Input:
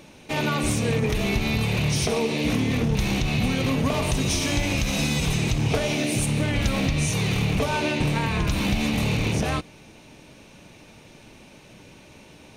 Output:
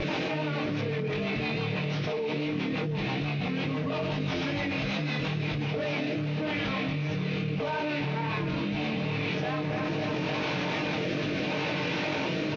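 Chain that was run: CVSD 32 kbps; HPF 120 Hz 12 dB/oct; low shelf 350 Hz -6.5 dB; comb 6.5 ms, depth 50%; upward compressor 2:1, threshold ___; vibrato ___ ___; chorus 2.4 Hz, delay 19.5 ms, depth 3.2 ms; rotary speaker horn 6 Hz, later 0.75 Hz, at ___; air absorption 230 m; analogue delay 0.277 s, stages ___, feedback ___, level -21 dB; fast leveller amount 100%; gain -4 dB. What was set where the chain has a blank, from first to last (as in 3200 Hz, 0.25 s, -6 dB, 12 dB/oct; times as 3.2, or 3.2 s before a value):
-35 dBFS, 0.83 Hz, 25 cents, 5.36, 4096, 71%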